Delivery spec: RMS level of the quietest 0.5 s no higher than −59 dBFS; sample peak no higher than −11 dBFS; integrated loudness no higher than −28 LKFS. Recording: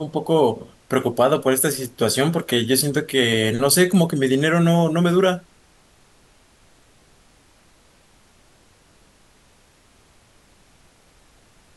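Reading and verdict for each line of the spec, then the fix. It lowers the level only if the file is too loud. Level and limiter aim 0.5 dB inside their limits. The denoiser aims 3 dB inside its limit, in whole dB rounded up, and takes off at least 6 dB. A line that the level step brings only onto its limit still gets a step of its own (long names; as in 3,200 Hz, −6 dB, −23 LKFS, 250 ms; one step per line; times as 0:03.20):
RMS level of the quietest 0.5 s −55 dBFS: out of spec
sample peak −5.0 dBFS: out of spec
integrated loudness −19.0 LKFS: out of spec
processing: level −9.5 dB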